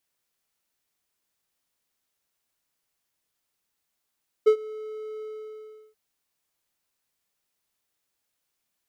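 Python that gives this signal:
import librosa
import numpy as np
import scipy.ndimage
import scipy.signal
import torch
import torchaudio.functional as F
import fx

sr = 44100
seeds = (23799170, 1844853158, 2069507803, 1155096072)

y = fx.adsr_tone(sr, wave='triangle', hz=432.0, attack_ms=16.0, decay_ms=83.0, sustain_db=-22.0, held_s=0.76, release_ms=726.0, level_db=-9.5)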